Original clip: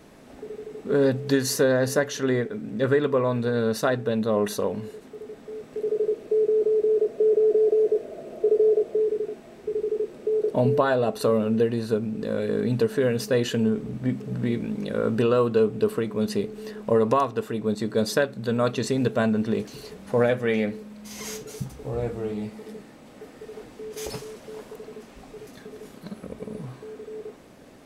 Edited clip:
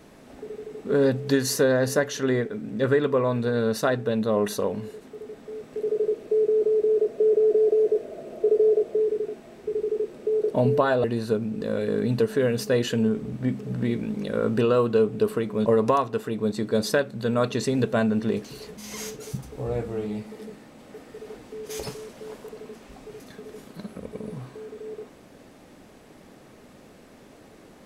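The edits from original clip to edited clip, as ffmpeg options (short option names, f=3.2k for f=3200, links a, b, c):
-filter_complex "[0:a]asplit=4[a][b][c][d];[a]atrim=end=11.042[e];[b]atrim=start=11.648:end=16.272[f];[c]atrim=start=16.888:end=20.002[g];[d]atrim=start=21.038[h];[e][f]acrossfade=d=0.004:c1=hsin:c2=hsin[i];[i][g]acrossfade=d=0.004:c1=hsin:c2=hsin[j];[j][h]acrossfade=d=0.004:c1=hsin:c2=hsin"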